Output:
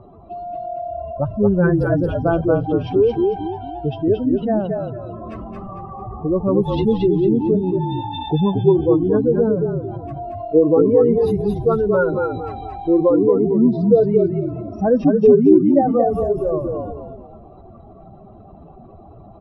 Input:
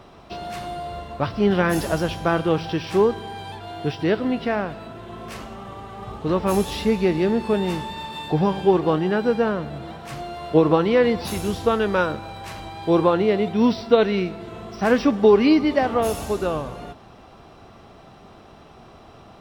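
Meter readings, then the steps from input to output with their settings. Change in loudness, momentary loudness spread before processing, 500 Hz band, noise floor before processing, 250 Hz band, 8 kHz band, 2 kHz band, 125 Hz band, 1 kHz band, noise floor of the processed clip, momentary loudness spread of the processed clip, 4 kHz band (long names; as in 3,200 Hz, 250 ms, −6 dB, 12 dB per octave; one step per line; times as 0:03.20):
+3.5 dB, 18 LU, +4.5 dB, −47 dBFS, +4.5 dB, below −20 dB, −5.5 dB, +6.0 dB, −0.5 dB, −43 dBFS, 16 LU, −8.0 dB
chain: expanding power law on the bin magnitudes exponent 2.7
echo with shifted repeats 226 ms, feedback 33%, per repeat −40 Hz, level −3.5 dB
level +3 dB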